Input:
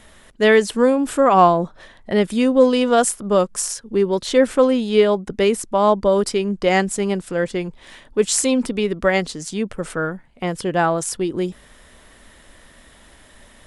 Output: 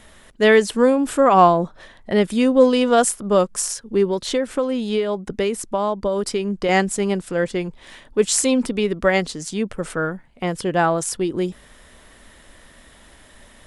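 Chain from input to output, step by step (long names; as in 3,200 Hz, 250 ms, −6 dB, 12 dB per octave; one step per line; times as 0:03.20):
0:04.06–0:06.69: downward compressor 6 to 1, threshold −18 dBFS, peak gain reduction 9 dB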